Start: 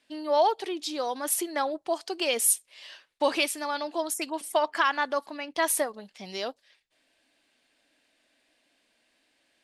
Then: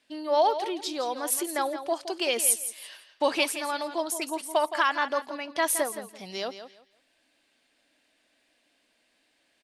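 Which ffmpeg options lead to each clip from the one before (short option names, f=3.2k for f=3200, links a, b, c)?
-af "aecho=1:1:168|336|504:0.282|0.0592|0.0124"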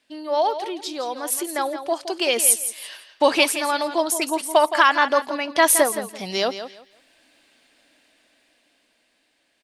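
-af "dynaudnorm=f=610:g=7:m=11.5dB,volume=1.5dB"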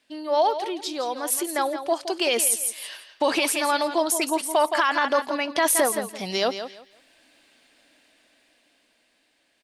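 -af "alimiter=limit=-11.5dB:level=0:latency=1:release=13"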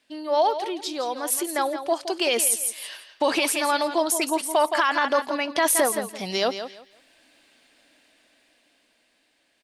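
-af anull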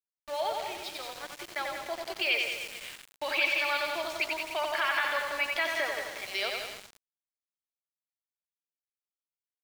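-af "highpass=f=460:w=0.5412,highpass=f=460:w=1.3066,equalizer=f=500:t=q:w=4:g=-9,equalizer=f=730:t=q:w=4:g=-6,equalizer=f=1k:t=q:w=4:g=-7,equalizer=f=2.3k:t=q:w=4:g=9,lowpass=f=4.6k:w=0.5412,lowpass=f=4.6k:w=1.3066,aecho=1:1:90|189|297.9|417.7|549.5:0.631|0.398|0.251|0.158|0.1,aeval=exprs='val(0)*gte(abs(val(0)),0.0237)':c=same,volume=-6.5dB"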